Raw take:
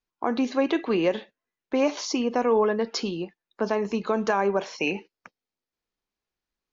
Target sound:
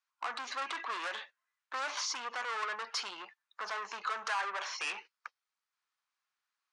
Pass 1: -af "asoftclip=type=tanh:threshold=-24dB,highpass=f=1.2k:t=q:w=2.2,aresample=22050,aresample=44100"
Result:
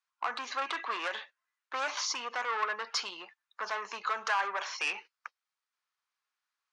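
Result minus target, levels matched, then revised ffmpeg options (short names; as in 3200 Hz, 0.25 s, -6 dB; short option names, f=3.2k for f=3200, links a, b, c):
soft clip: distortion -4 dB
-af "asoftclip=type=tanh:threshold=-31dB,highpass=f=1.2k:t=q:w=2.2,aresample=22050,aresample=44100"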